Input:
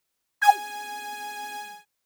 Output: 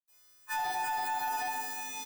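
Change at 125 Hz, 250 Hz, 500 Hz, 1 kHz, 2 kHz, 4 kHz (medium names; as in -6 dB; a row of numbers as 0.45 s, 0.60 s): no reading, -0.5 dB, -2.5 dB, -7.5 dB, -6.5 dB, -6.0 dB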